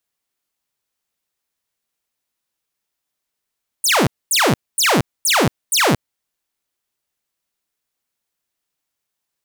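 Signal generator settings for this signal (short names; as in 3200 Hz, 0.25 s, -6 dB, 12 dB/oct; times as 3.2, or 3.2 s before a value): burst of laser zaps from 10000 Hz, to 100 Hz, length 0.23 s saw, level -9.5 dB, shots 5, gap 0.24 s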